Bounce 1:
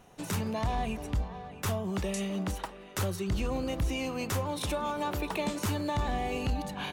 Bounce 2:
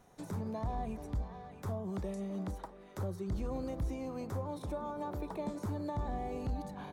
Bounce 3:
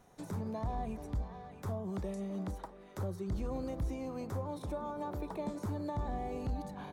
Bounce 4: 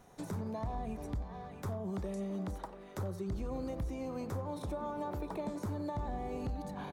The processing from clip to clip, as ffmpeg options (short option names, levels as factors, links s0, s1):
-filter_complex "[0:a]equalizer=f=2800:w=4.5:g=-10.5,acrossover=split=1100[s0][s1];[s1]acompressor=threshold=0.00251:ratio=6[s2];[s0][s2]amix=inputs=2:normalize=0,volume=0.531"
-af anull
-filter_complex "[0:a]acompressor=threshold=0.0112:ratio=2.5,asplit=2[s0][s1];[s1]adelay=90,highpass=300,lowpass=3400,asoftclip=type=hard:threshold=0.01,volume=0.251[s2];[s0][s2]amix=inputs=2:normalize=0,volume=1.41"